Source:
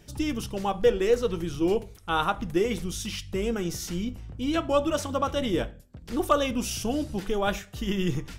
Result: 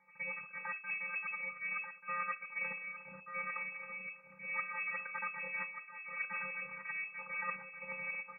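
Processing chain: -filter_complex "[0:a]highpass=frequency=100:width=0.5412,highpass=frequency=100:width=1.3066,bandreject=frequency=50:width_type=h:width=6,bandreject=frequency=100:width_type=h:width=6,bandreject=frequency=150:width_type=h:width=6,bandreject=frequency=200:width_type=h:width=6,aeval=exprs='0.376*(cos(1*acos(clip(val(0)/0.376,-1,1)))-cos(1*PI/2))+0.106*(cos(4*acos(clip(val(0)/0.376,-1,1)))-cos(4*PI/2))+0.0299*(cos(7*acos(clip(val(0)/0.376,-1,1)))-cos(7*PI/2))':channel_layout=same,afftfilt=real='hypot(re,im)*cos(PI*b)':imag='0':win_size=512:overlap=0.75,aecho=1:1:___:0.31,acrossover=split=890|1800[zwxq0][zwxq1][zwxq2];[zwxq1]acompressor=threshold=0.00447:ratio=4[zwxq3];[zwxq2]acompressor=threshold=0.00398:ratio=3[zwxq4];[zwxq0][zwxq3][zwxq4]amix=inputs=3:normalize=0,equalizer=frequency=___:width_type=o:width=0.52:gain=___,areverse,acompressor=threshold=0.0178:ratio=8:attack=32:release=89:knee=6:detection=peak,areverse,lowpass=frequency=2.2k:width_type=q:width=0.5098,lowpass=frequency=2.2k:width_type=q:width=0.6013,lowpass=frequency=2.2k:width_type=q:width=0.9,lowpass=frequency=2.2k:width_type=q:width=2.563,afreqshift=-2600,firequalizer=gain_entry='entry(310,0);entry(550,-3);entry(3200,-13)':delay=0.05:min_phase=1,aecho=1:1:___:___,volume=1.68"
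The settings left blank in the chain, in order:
6.2, 1.4k, 12.5, 1186, 0.376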